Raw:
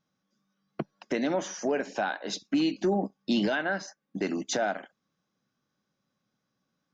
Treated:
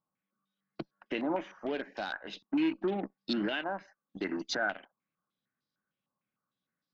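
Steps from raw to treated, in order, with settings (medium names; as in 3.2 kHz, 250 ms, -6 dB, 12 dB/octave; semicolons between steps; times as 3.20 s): dynamic bell 320 Hz, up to +7 dB, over -41 dBFS, Q 3.8; Chebyshev shaper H 7 -26 dB, 8 -34 dB, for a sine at -16.5 dBFS; step-sequenced low-pass 6.6 Hz 1–4.5 kHz; trim -8.5 dB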